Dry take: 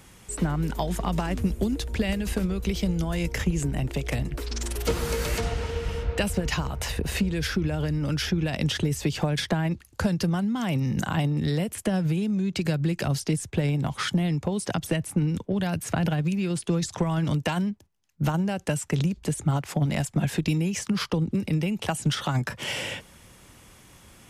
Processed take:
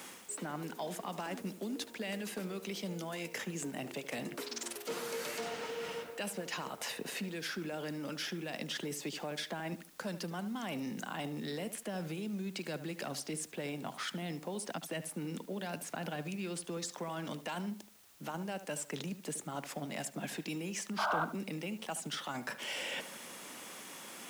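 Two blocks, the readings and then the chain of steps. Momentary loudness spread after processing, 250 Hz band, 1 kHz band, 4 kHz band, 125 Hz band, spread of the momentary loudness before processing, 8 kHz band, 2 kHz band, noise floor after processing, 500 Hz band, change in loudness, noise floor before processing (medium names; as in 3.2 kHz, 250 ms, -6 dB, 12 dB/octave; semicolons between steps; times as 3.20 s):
3 LU, -14.5 dB, -7.0 dB, -8.5 dB, -20.5 dB, 4 LU, -7.0 dB, -8.0 dB, -53 dBFS, -9.5 dB, -12.5 dB, -53 dBFS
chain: high-pass 230 Hz 24 dB/octave; peaking EQ 330 Hz -3.5 dB 0.79 oct; reverse; compression 5:1, threshold -44 dBFS, peak gain reduction 19.5 dB; reverse; painted sound noise, 20.98–21.25 s, 580–1600 Hz -37 dBFS; saturation -29 dBFS, distortion -26 dB; added noise white -68 dBFS; on a send: tape echo 74 ms, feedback 34%, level -11 dB, low-pass 1.9 kHz; on the sum: trim +5.5 dB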